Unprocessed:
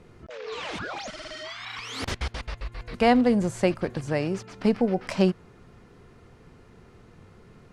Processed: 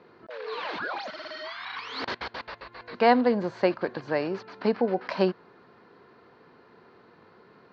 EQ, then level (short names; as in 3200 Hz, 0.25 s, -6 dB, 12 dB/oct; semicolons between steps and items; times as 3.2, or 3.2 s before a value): air absorption 120 m; speaker cabinet 350–5600 Hz, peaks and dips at 990 Hz +6 dB, 1600 Hz +6 dB, 4300 Hz +10 dB; tilt -1.5 dB/oct; 0.0 dB